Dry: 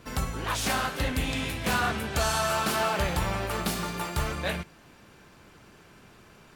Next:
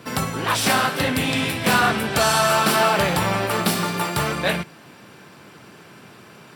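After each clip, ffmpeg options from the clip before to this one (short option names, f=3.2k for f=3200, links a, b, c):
-af "highpass=f=110:w=0.5412,highpass=f=110:w=1.3066,bandreject=f=6.6k:w=8.8,volume=9dB"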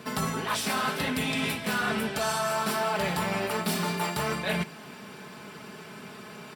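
-af "aecho=1:1:4.7:0.56,areverse,acompressor=threshold=-26dB:ratio=6,areverse"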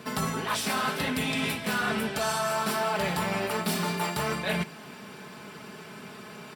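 -af anull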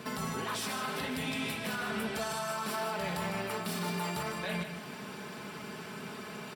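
-af "alimiter=level_in=2.5dB:limit=-24dB:level=0:latency=1:release=172,volume=-2.5dB,aecho=1:1:154:0.398"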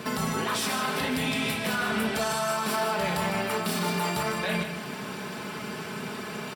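-filter_complex "[0:a]asplit=2[a][b];[b]adelay=32,volume=-11dB[c];[a][c]amix=inputs=2:normalize=0,volume=7dB"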